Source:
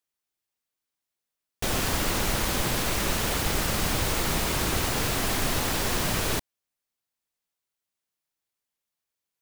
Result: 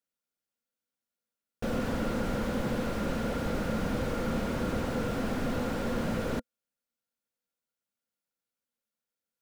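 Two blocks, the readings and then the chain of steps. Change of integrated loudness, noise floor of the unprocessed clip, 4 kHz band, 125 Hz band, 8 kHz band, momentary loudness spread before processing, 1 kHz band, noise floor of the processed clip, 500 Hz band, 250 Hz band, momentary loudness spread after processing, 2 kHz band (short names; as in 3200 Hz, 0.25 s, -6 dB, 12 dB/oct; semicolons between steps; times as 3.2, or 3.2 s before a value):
-6.0 dB, under -85 dBFS, -15.0 dB, -4.0 dB, -19.5 dB, 2 LU, -6.5 dB, under -85 dBFS, -0.5 dB, +1.5 dB, 2 LU, -9.0 dB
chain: small resonant body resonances 230/500/1400 Hz, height 12 dB, ringing for 40 ms; slew limiter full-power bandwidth 56 Hz; gain -6.5 dB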